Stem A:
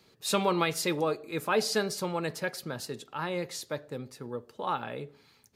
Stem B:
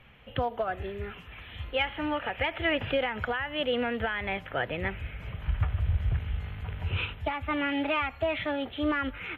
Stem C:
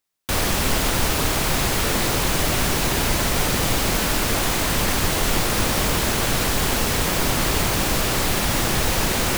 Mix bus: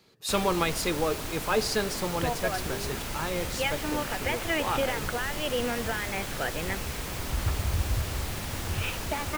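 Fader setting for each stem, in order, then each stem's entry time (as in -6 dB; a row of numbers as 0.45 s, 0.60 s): +0.5 dB, -1.5 dB, -14.5 dB; 0.00 s, 1.85 s, 0.00 s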